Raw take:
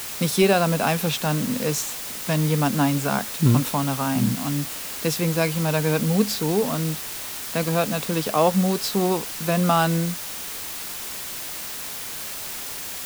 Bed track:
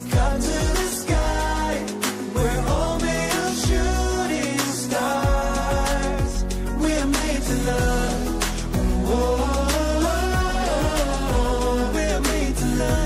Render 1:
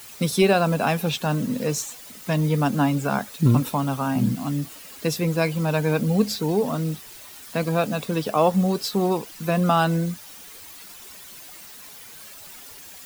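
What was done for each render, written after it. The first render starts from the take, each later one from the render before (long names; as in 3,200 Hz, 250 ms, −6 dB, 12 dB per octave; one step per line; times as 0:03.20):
broadband denoise 12 dB, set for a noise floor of −33 dBFS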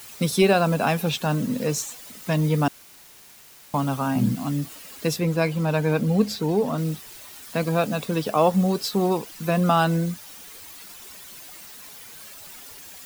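0:02.68–0:03.74: fill with room tone
0:05.16–0:06.78: high-shelf EQ 4,700 Hz −5.5 dB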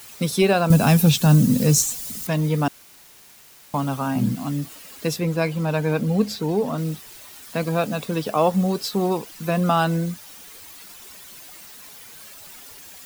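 0:00.70–0:02.27: bass and treble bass +14 dB, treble +11 dB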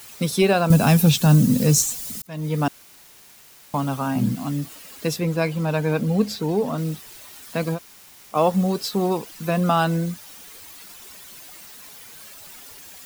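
0:02.22–0:02.63: fade in
0:07.76–0:08.34: fill with room tone, crossfade 0.06 s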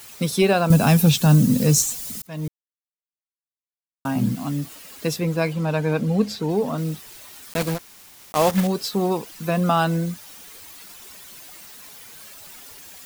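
0:02.48–0:04.05: silence
0:05.53–0:06.50: high-shelf EQ 11,000 Hz −8 dB
0:07.51–0:08.68: one scale factor per block 3 bits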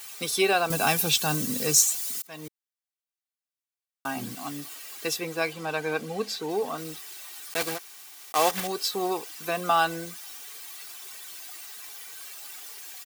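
high-pass filter 920 Hz 6 dB per octave
comb filter 2.6 ms, depth 43%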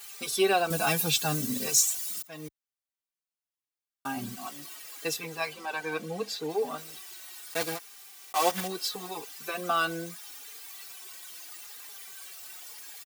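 barber-pole flanger 4.5 ms −0.76 Hz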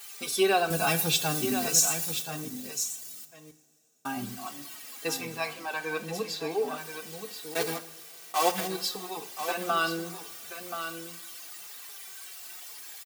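single-tap delay 1,029 ms −9 dB
coupled-rooms reverb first 0.57 s, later 3.7 s, from −19 dB, DRR 10.5 dB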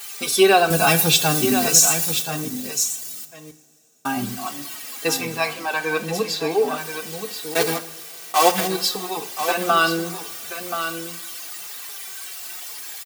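level +9.5 dB
brickwall limiter −2 dBFS, peak gain reduction 2.5 dB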